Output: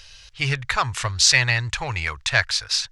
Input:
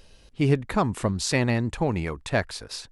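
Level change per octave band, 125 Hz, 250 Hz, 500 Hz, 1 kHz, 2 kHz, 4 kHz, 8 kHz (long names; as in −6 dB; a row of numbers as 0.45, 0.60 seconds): −0.5, −12.5, −7.0, +3.0, +11.0, +14.0, +12.0 decibels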